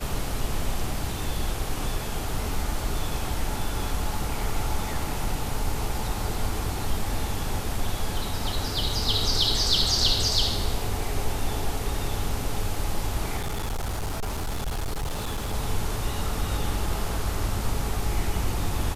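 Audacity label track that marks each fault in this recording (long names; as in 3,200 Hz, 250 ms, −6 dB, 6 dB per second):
13.370000	15.540000	clipping −25 dBFS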